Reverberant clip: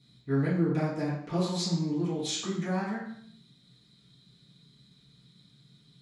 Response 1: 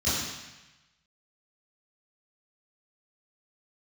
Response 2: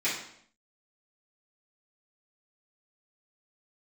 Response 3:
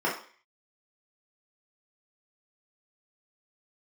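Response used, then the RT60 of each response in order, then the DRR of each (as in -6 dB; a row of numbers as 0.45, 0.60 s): 2; 1.0, 0.65, 0.45 s; -13.5, -12.0, -6.5 dB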